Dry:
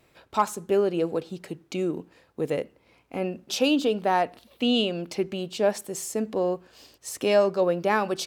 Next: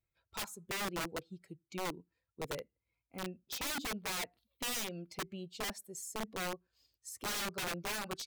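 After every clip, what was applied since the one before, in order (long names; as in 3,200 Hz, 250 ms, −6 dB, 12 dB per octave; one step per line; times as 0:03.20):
spectral dynamics exaggerated over time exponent 1.5
wrap-around overflow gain 24 dB
level −8.5 dB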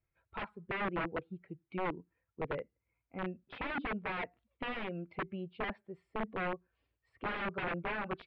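inverse Chebyshev low-pass filter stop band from 6,000 Hz, stop band 50 dB
level +3.5 dB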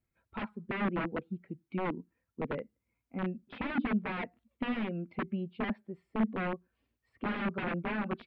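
parametric band 230 Hz +14 dB 0.57 octaves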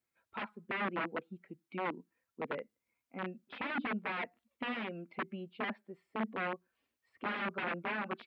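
high-pass filter 650 Hz 6 dB per octave
level +1.5 dB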